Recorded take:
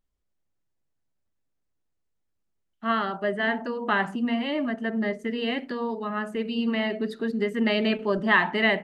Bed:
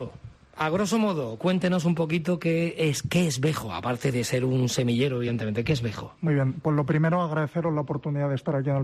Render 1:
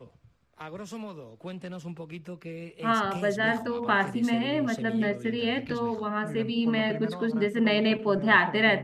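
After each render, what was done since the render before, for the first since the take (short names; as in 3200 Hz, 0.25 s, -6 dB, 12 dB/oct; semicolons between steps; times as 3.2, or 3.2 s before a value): add bed -15 dB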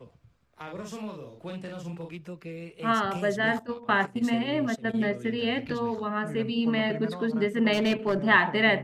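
0.63–2.14 doubler 42 ms -3.5 dB; 3.59–5.04 gate -30 dBFS, range -14 dB; 7.73–8.19 hard clip -19.5 dBFS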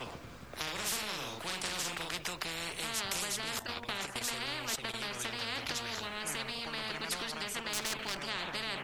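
compressor 4:1, threshold -31 dBFS, peak gain reduction 13.5 dB; spectral compressor 10:1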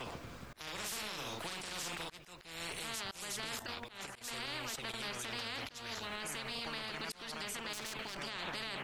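auto swell 0.299 s; limiter -31 dBFS, peak gain reduction 11.5 dB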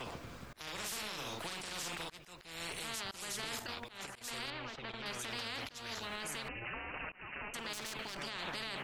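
3.09–3.67 flutter echo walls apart 8.2 m, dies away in 0.26 s; 4.5–5.06 air absorption 220 m; 6.48–7.54 inverted band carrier 2900 Hz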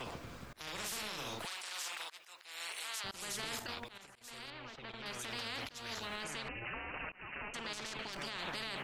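1.45–3.04 HPF 820 Hz; 3.98–5.52 fade in, from -12 dB; 6.24–8.13 LPF 7600 Hz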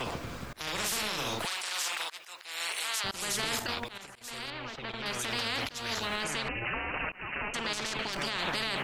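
gain +9 dB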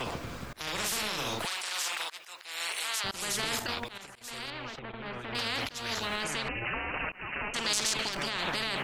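4.79–5.35 air absorption 500 m; 7.56–8.09 tone controls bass -1 dB, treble +12 dB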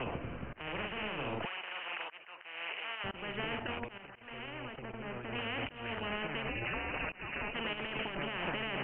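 Chebyshev low-pass 3000 Hz, order 8; dynamic EQ 1400 Hz, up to -5 dB, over -49 dBFS, Q 0.73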